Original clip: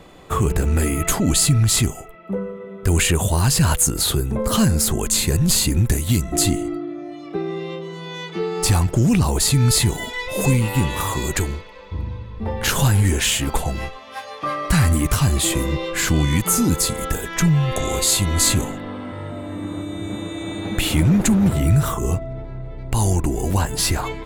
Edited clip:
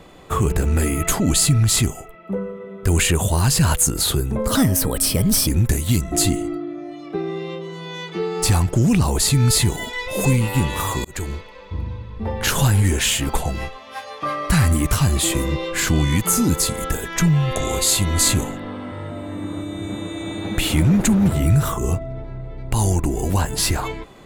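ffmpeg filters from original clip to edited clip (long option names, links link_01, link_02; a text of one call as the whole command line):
ffmpeg -i in.wav -filter_complex "[0:a]asplit=4[link_01][link_02][link_03][link_04];[link_01]atrim=end=4.554[link_05];[link_02]atrim=start=4.55:end=5.68,asetpts=PTS-STARTPTS,asetrate=53802,aresample=44100[link_06];[link_03]atrim=start=5.676:end=11.25,asetpts=PTS-STARTPTS,afade=type=out:start_time=5.57:duration=0.004:curve=hsin[link_07];[link_04]atrim=start=11.25,asetpts=PTS-STARTPTS,afade=type=in:duration=0.31[link_08];[link_05][link_06]acrossfade=duration=0.004:curve1=hsin:curve2=hsin[link_09];[link_07][link_08]concat=n=2:v=0:a=1[link_10];[link_09][link_10]acrossfade=duration=0.004:curve1=hsin:curve2=hsin" out.wav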